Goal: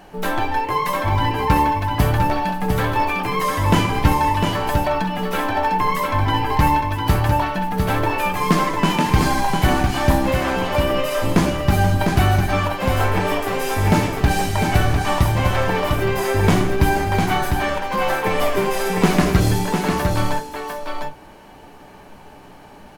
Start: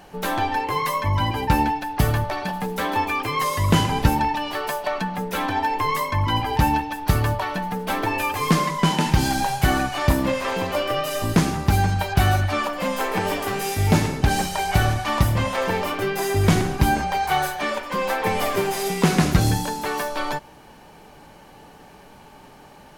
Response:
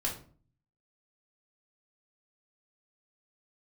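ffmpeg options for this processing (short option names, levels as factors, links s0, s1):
-filter_complex "[0:a]asplit=2[s0][s1];[s1]aecho=0:1:702:0.562[s2];[s0][s2]amix=inputs=2:normalize=0,acrusher=bits=8:mode=log:mix=0:aa=0.000001,asplit=2[s3][s4];[1:a]atrim=start_sample=2205,atrim=end_sample=3087,lowpass=3500[s5];[s4][s5]afir=irnorm=-1:irlink=0,volume=0.422[s6];[s3][s6]amix=inputs=2:normalize=0,volume=0.891"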